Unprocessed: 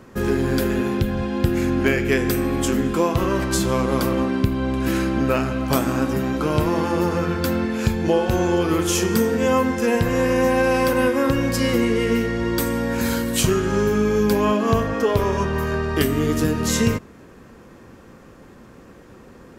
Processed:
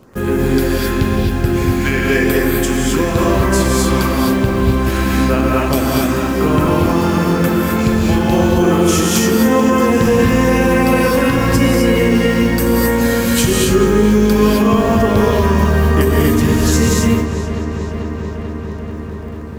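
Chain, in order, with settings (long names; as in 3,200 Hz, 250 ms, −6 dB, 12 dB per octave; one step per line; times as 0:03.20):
auto-filter notch sine 0.96 Hz 440–5,600 Hz
in parallel at −5.5 dB: bit reduction 6 bits
on the sum: feedback echo with a low-pass in the loop 440 ms, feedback 81%, low-pass 4,500 Hz, level −12 dB
reverb whose tail is shaped and stops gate 290 ms rising, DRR −3 dB
boost into a limiter +1.5 dB
level −2 dB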